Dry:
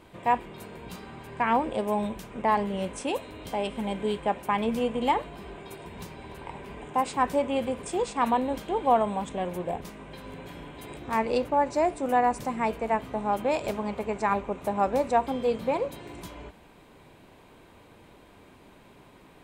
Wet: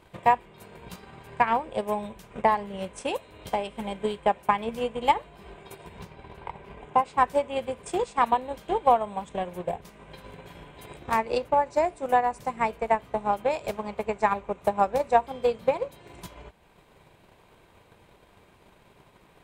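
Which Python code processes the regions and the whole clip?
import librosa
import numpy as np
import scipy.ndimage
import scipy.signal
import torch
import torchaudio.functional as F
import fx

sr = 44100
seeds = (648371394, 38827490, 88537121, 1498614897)

y = fx.chain(x, sr, fx.high_shelf(hz=5600.0, db=-12.0),
    fx.notch(hz=1800.0, q=26.0), at=(5.99, 7.18))
y = fx.peak_eq(y, sr, hz=270.0, db=-8.0, octaves=0.57)
y = fx.transient(y, sr, attack_db=10, sustain_db=-4)
y = y * librosa.db_to_amplitude(-3.0)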